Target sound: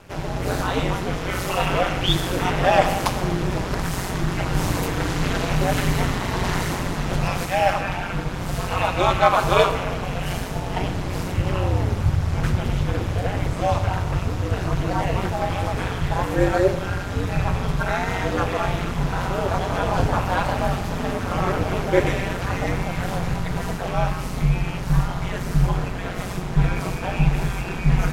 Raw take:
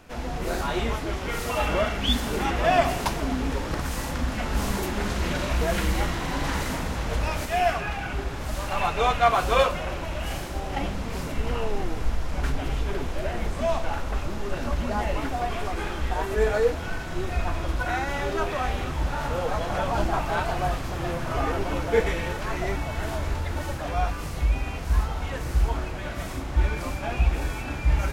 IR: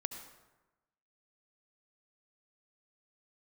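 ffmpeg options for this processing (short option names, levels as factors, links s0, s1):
-filter_complex "[0:a]aeval=exprs='val(0)*sin(2*PI*92*n/s)':c=same,asplit=2[s0][s1];[1:a]atrim=start_sample=2205[s2];[s1][s2]afir=irnorm=-1:irlink=0,volume=1.19[s3];[s0][s3]amix=inputs=2:normalize=0"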